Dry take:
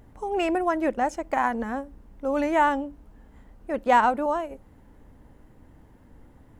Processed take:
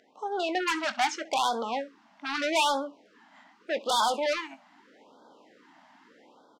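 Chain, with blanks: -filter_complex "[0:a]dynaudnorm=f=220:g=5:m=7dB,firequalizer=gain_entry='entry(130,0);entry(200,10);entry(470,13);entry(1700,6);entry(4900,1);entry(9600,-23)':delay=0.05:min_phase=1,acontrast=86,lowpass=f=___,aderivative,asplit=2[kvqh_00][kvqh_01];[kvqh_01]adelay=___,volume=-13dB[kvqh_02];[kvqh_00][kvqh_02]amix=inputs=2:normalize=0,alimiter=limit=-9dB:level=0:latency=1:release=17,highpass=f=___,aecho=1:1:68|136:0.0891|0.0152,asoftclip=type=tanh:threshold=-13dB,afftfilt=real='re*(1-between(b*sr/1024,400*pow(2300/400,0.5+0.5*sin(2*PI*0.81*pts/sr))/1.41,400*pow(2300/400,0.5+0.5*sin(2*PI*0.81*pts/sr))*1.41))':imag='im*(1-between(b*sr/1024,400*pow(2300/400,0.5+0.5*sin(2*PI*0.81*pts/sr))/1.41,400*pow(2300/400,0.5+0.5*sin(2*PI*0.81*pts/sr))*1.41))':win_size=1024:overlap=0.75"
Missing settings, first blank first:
8500, 22, 180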